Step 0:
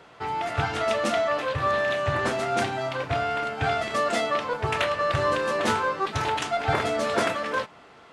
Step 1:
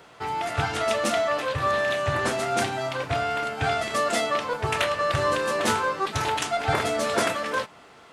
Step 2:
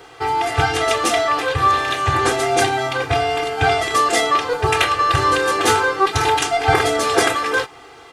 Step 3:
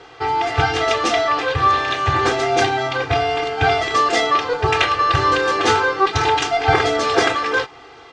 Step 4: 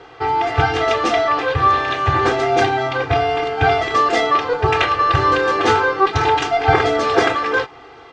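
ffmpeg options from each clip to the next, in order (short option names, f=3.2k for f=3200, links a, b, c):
-af "highshelf=f=7.4k:g=12"
-af "aecho=1:1:2.5:0.95,volume=5.5dB"
-af "lowpass=f=6.1k:w=0.5412,lowpass=f=6.1k:w=1.3066"
-af "highshelf=f=3.5k:g=-9.5,volume=2dB"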